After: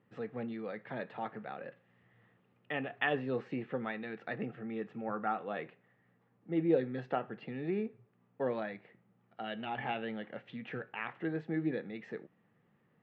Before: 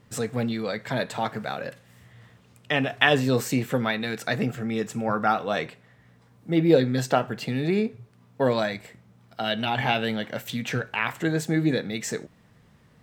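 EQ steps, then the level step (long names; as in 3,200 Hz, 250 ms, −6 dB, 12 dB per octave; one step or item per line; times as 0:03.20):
loudspeaker in its box 230–2,300 Hz, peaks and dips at 260 Hz −5 dB, 440 Hz −3 dB, 630 Hz −7 dB, 1,000 Hz −8 dB, 1,500 Hz −7 dB, 2,200 Hz −6 dB
−6.5 dB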